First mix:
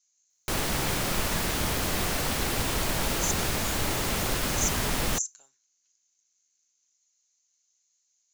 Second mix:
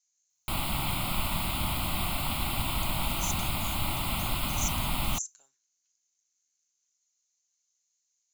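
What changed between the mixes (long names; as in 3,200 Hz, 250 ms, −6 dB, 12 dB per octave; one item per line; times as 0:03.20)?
speech −5.0 dB
background: add phaser with its sweep stopped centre 1,700 Hz, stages 6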